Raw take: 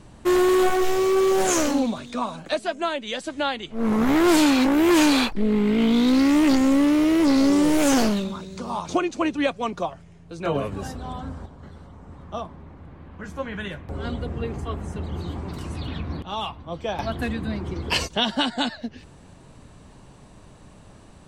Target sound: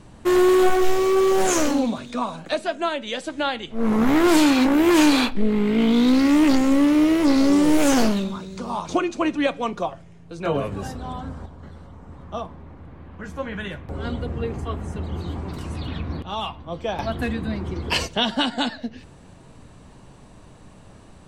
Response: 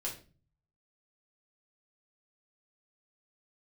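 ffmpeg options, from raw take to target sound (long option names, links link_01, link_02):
-filter_complex "[0:a]asplit=2[link_01][link_02];[1:a]atrim=start_sample=2205,asetrate=40572,aresample=44100,lowpass=4400[link_03];[link_02][link_03]afir=irnorm=-1:irlink=0,volume=-14dB[link_04];[link_01][link_04]amix=inputs=2:normalize=0"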